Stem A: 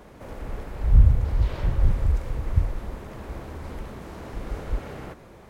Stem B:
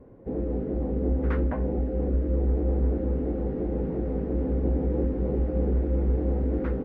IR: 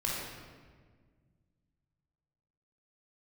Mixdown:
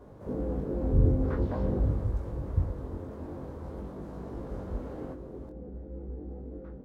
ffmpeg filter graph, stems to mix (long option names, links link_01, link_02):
-filter_complex "[0:a]highpass=73,highshelf=frequency=2500:gain=-11,volume=-1.5dB,asplit=2[link_01][link_02];[link_02]volume=-17dB[link_03];[1:a]afade=type=out:start_time=1.82:duration=0.21:silence=0.251189[link_04];[2:a]atrim=start_sample=2205[link_05];[link_03][link_05]afir=irnorm=-1:irlink=0[link_06];[link_01][link_04][link_06]amix=inputs=3:normalize=0,equalizer=frequency=2300:width_type=o:width=1.1:gain=-10,flanger=delay=20:depth=3.1:speed=0.48"